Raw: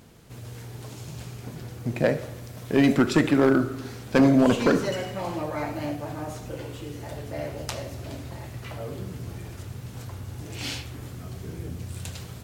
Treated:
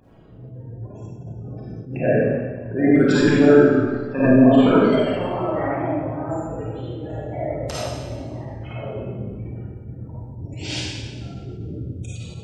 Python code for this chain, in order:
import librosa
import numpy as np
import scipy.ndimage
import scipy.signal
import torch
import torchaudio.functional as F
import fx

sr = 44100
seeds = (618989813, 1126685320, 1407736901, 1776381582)

y = fx.spec_gate(x, sr, threshold_db=-20, keep='strong')
y = fx.quant_float(y, sr, bits=8)
y = fx.wow_flutter(y, sr, seeds[0], rate_hz=2.1, depth_cents=150.0)
y = fx.rev_freeverb(y, sr, rt60_s=1.4, hf_ratio=0.95, predelay_ms=10, drr_db=-9.0)
y = fx.attack_slew(y, sr, db_per_s=130.0)
y = y * 10.0 ** (-2.5 / 20.0)